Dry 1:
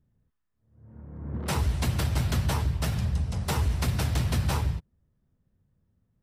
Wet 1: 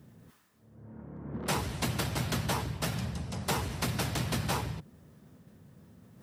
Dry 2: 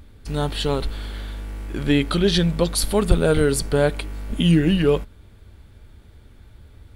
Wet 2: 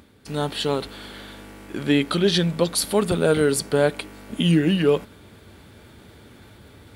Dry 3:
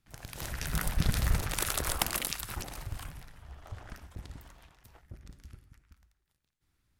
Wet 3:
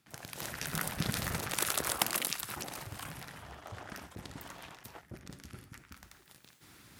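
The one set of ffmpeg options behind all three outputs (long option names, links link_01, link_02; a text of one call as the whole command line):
ffmpeg -i in.wav -af "highpass=160,areverse,acompressor=mode=upward:threshold=-37dB:ratio=2.5,areverse" out.wav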